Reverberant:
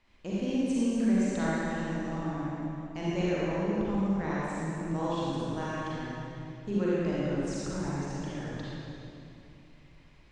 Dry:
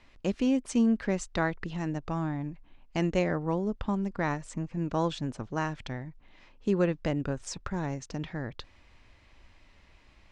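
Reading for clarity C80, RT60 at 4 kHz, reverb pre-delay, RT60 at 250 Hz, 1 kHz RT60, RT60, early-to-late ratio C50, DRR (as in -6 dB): -4.0 dB, 2.4 s, 36 ms, 3.3 s, 2.7 s, 2.8 s, -6.5 dB, -8.0 dB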